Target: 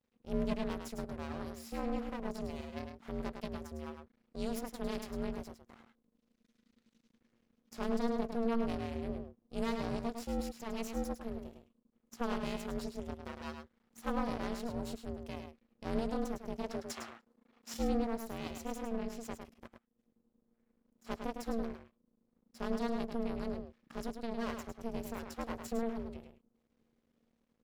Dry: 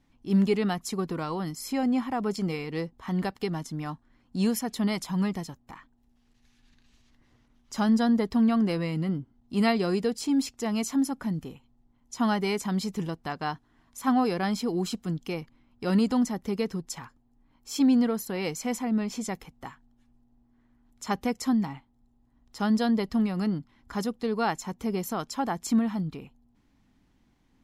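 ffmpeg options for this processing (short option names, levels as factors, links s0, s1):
-filter_complex "[0:a]asplit=3[s0][s1][s2];[s0]afade=t=out:st=19.66:d=0.02[s3];[s1]acompressor=threshold=0.00126:ratio=8,afade=t=in:st=19.66:d=0.02,afade=t=out:st=21.04:d=0.02[s4];[s2]afade=t=in:st=21.04:d=0.02[s5];[s3][s4][s5]amix=inputs=3:normalize=0,aeval=exprs='max(val(0),0)':c=same,aeval=exprs='val(0)*sin(2*PI*230*n/s)':c=same,asettb=1/sr,asplit=3[s6][s7][s8];[s6]atrim=end=16.644[s9];[s7]atrim=start=16.64:end=17.74,asetpts=PTS-STARTPTS,afade=t=in:d=0.004:c=qsin,afade=t=out:st=1.096:d=0.004:c=qsin,asplit=2[s10][s11];[s11]highpass=f=720:p=1,volume=8.91,asoftclip=type=tanh:threshold=0.106[s12];[s10][s12]amix=inputs=2:normalize=0,lowpass=f=4800:p=1,volume=0.501[s13];[s8]atrim=start=17.736[s14];[s9][s13]acrossfade=d=0.004:c1=hsin:c2=qsin[s15];[s15][s14]acrossfade=d=0.004:c1=qsin:c2=hsin,asplit=2[s16][s17];[s17]adelay=105,volume=0.501,highshelf=f=4000:g=-2.36[s18];[s16][s18]amix=inputs=2:normalize=0,volume=0.473"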